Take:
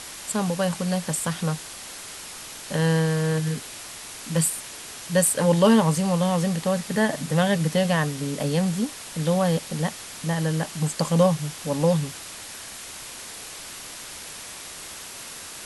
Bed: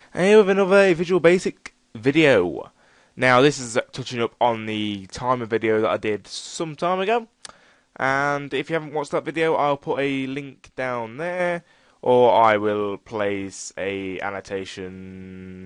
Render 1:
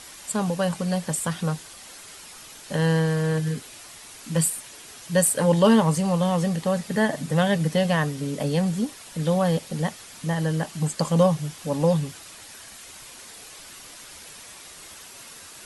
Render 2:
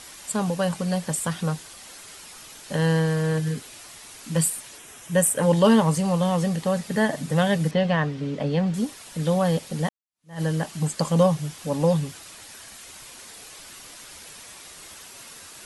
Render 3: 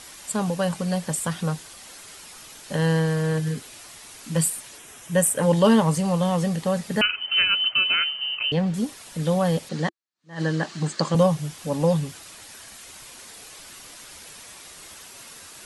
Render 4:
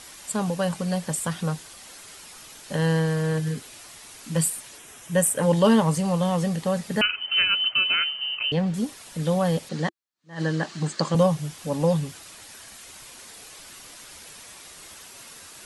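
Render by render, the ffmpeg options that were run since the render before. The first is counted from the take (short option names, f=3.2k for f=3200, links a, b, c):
-af "afftdn=nr=7:nf=-39"
-filter_complex "[0:a]asettb=1/sr,asplit=3[a][b][c];[a]atrim=end=4.784[d];[b]atrim=start=4.78:end=5.43,asetpts=PTS-STARTPTS,afade=t=in:d=0.004:c=qsin,afade=t=out:st=0.646:d=0.004:c=qsin,equalizer=f=4.5k:w=3.8:g=-13[e];[c]atrim=start=5.426[f];[d][e]acrossfade=d=0.004:c1=hsin:c2=qsin[g];[g][f]acrossfade=d=0.004:c1=qsin:c2=hsin,asettb=1/sr,asplit=3[h][i][j];[h]atrim=end=7.714[k];[i]atrim=start=7.71:end=8.74,asetpts=PTS-STARTPTS,afade=t=in:d=0.004:c=qsin,afade=t=out:st=1.026:d=0.004:c=qsin,lowpass=3.5k[l];[j]atrim=start=8.736[m];[k][l]acrossfade=d=0.004:c1=hsin:c2=qsin[n];[n][m]acrossfade=d=0.004:c1=qsin:c2=hsin,asplit=2[o][p];[o]atrim=end=9.89,asetpts=PTS-STARTPTS,afade=t=out:st=9.886:d=0.004:c=hsin[q];[p]atrim=start=9.89,asetpts=PTS-STARTPTS,afade=t=in:d=0.52:c=exp[r];[q][r]concat=n=2:v=0:a=1"
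-filter_complex "[0:a]asettb=1/sr,asplit=3[a][b][c];[a]atrim=end=7.014[d];[b]atrim=start=7.01:end=8.52,asetpts=PTS-STARTPTS,afade=t=in:d=0.004:c=qsin,afade=t=out:st=1.506:d=0.004:c=qsin,lowpass=f=2.7k:t=q:w=0.5098,lowpass=f=2.7k:t=q:w=0.6013,lowpass=f=2.7k:t=q:w=0.9,lowpass=f=2.7k:t=q:w=2.563,afreqshift=-3200[e];[c]atrim=start=8.516[f];[d][e]acrossfade=d=0.004:c1=hsin:c2=qsin[g];[g][f]acrossfade=d=0.004:c1=qsin:c2=hsin,asettb=1/sr,asplit=3[h][i][j];[h]atrim=end=9.694[k];[i]atrim=start=9.69:end=11.15,asetpts=PTS-STARTPTS,afade=t=in:d=0.004:c=qsin,afade=t=out:st=1.456:d=0.004:c=qsin,highpass=120,equalizer=f=340:t=q:w=4:g=7,equalizer=f=1.2k:t=q:w=4:g=4,equalizer=f=1.7k:t=q:w=4:g=6,equalizer=f=4.2k:t=q:w=4:g=6,lowpass=f=7.4k:w=0.5412,lowpass=f=7.4k:w=1.3066[l];[j]atrim=start=11.146[m];[k][l]acrossfade=d=0.004:c1=hsin:c2=qsin[n];[n][m]acrossfade=d=0.004:c1=qsin:c2=hsin"
-af "volume=-1dB"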